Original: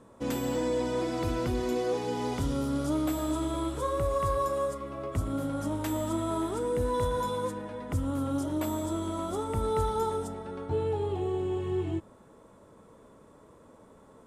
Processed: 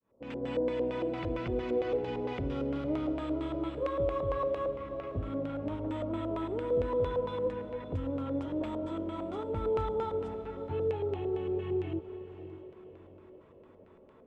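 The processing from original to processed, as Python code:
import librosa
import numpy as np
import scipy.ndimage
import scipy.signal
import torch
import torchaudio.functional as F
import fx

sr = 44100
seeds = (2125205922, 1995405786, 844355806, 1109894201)

y = fx.fade_in_head(x, sr, length_s=0.53)
y = fx.filter_lfo_lowpass(y, sr, shape='square', hz=4.4, low_hz=530.0, high_hz=2600.0, q=2.4)
y = fx.echo_diffused(y, sr, ms=571, feedback_pct=41, wet_db=-12.5)
y = y * 10.0 ** (-5.5 / 20.0)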